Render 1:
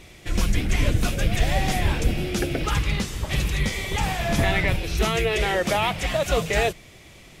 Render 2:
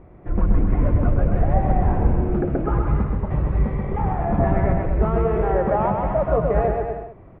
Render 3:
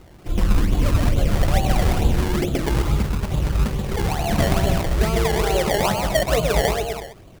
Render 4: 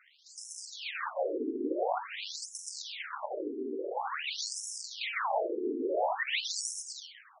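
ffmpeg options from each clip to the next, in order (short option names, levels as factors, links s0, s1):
-filter_complex "[0:a]lowpass=f=1200:w=0.5412,lowpass=f=1200:w=1.3066,asplit=2[s0][s1];[s1]aecho=0:1:130|234|317.2|383.8|437:0.631|0.398|0.251|0.158|0.1[s2];[s0][s2]amix=inputs=2:normalize=0,volume=1.26"
-af "acrusher=samples=24:mix=1:aa=0.000001:lfo=1:lforange=24:lforate=2.3"
-filter_complex "[0:a]asplit=3[s0][s1][s2];[s1]adelay=498,afreqshift=-77,volume=0.0708[s3];[s2]adelay=996,afreqshift=-154,volume=0.0219[s4];[s0][s3][s4]amix=inputs=3:normalize=0,afftfilt=real='re*lt(hypot(re,im),0.447)':imag='im*lt(hypot(re,im),0.447)':win_size=1024:overlap=0.75,afftfilt=real='re*between(b*sr/1024,310*pow(7500/310,0.5+0.5*sin(2*PI*0.48*pts/sr))/1.41,310*pow(7500/310,0.5+0.5*sin(2*PI*0.48*pts/sr))*1.41)':imag='im*between(b*sr/1024,310*pow(7500/310,0.5+0.5*sin(2*PI*0.48*pts/sr))/1.41,310*pow(7500/310,0.5+0.5*sin(2*PI*0.48*pts/sr))*1.41)':win_size=1024:overlap=0.75"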